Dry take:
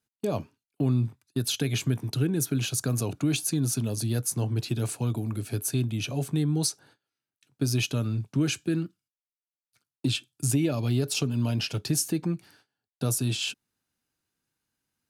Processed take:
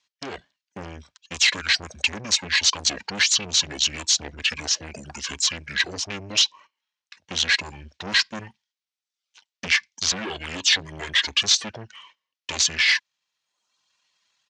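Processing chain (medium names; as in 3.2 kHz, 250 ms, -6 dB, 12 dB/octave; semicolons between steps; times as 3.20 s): speed mistake 24 fps film run at 25 fps; reverb removal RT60 0.83 s; saturation -31 dBFS, distortion -7 dB; dynamic bell 110 Hz, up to +3 dB, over -48 dBFS, Q 3.9; level rider gain up to 4 dB; frequency weighting ITU-R 468; pitch shift -8 st; trim +4 dB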